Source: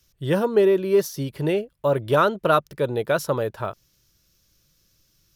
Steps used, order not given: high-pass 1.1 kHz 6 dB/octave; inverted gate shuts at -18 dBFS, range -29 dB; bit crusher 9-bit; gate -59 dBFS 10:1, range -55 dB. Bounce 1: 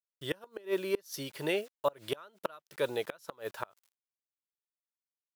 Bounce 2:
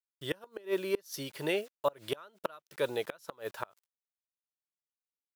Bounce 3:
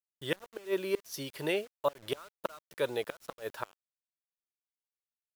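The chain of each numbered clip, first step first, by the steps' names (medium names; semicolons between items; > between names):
bit crusher > high-pass > gate > inverted gate; bit crusher > high-pass > inverted gate > gate; high-pass > inverted gate > bit crusher > gate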